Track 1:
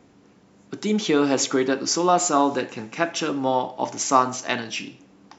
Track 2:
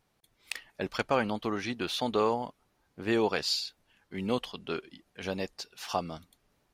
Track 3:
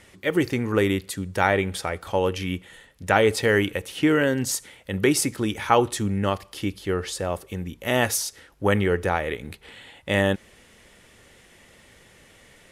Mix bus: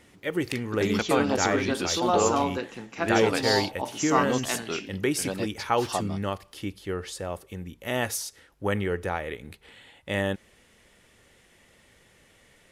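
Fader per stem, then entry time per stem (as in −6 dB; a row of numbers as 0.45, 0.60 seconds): −6.5, +1.5, −6.0 decibels; 0.00, 0.00, 0.00 seconds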